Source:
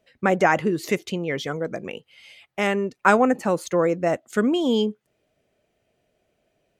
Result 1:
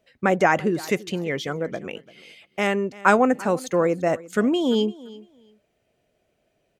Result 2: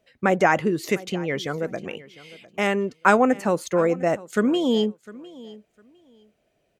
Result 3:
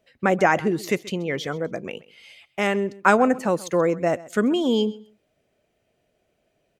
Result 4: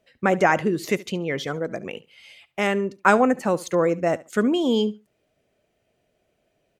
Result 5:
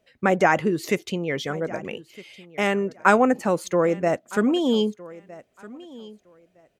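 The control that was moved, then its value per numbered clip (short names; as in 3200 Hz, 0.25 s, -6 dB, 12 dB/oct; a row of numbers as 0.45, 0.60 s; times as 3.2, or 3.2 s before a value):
feedback echo, time: 341, 704, 131, 71, 1261 ms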